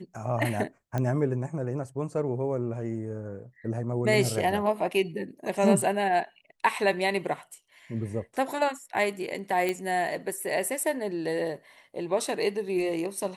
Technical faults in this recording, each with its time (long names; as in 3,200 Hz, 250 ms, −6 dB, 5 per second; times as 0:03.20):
0:00.98: click −17 dBFS
0:09.69: click −15 dBFS